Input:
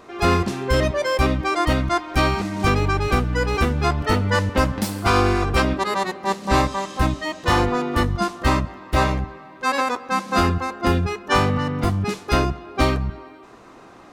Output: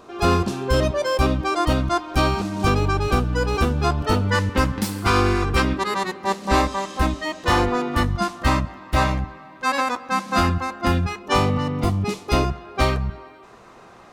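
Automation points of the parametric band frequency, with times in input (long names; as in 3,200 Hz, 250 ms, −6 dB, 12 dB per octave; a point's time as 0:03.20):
parametric band −10 dB 0.35 octaves
2,000 Hz
from 0:04.30 650 Hz
from 0:06.25 130 Hz
from 0:07.88 420 Hz
from 0:11.19 1,600 Hz
from 0:12.44 290 Hz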